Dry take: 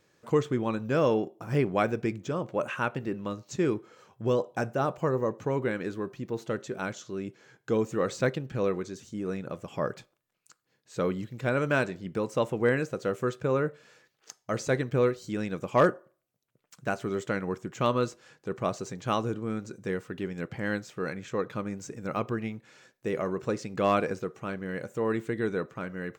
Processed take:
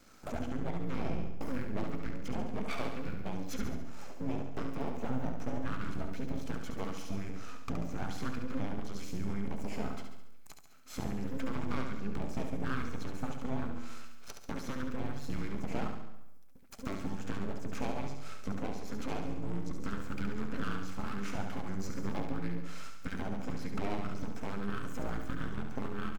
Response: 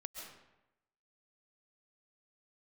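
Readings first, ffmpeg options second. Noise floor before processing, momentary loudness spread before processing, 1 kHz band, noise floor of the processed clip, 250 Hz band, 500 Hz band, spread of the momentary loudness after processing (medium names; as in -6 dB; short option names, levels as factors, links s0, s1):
-77 dBFS, 10 LU, -9.5 dB, -45 dBFS, -5.5 dB, -15.0 dB, 6 LU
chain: -filter_complex "[0:a]acrossover=split=4300[s0][s1];[s1]acompressor=threshold=0.00141:ratio=4:attack=1:release=60[s2];[s0][s2]amix=inputs=2:normalize=0,highpass=f=43:w=0.5412,highpass=f=43:w=1.3066,equalizer=f=3900:t=o:w=0.27:g=-6.5,bandreject=f=50:t=h:w=6,bandreject=f=100:t=h:w=6,bandreject=f=150:t=h:w=6,bandreject=f=200:t=h:w=6,bandreject=f=250:t=h:w=6,bandreject=f=300:t=h:w=6,aecho=1:1:1.1:0.67,acompressor=threshold=0.01:ratio=5,asoftclip=type=tanh:threshold=0.0141,afreqshift=-390,aeval=exprs='max(val(0),0)':c=same,aecho=1:1:70|140|210|280|350|420:0.501|0.261|0.136|0.0705|0.0366|0.0191,asplit=2[s3][s4];[1:a]atrim=start_sample=2205,highshelf=f=7200:g=11.5[s5];[s4][s5]afir=irnorm=-1:irlink=0,volume=0.316[s6];[s3][s6]amix=inputs=2:normalize=0,volume=2.66"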